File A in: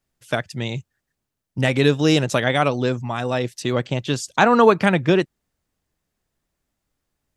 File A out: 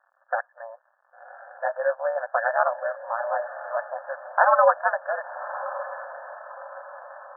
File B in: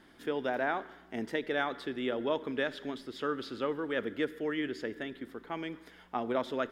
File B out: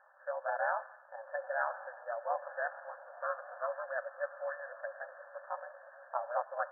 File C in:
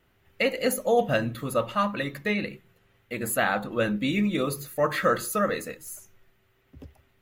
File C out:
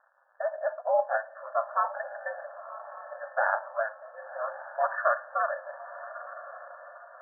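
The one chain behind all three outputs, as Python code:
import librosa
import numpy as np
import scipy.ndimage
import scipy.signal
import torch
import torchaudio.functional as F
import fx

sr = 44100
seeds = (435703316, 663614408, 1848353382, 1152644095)

p1 = fx.dmg_crackle(x, sr, seeds[0], per_s=330.0, level_db=-41.0)
p2 = fx.echo_diffused(p1, sr, ms=1092, feedback_pct=46, wet_db=-13.5)
p3 = (np.mod(10.0 ** (4.0 / 20.0) * p2 + 1.0, 2.0) - 1.0) / 10.0 ** (4.0 / 20.0)
p4 = p2 + F.gain(torch.from_numpy(p3), -10.0).numpy()
p5 = p4 * np.sin(2.0 * np.pi * 110.0 * np.arange(len(p4)) / sr)
y = fx.brickwall_bandpass(p5, sr, low_hz=520.0, high_hz=1800.0)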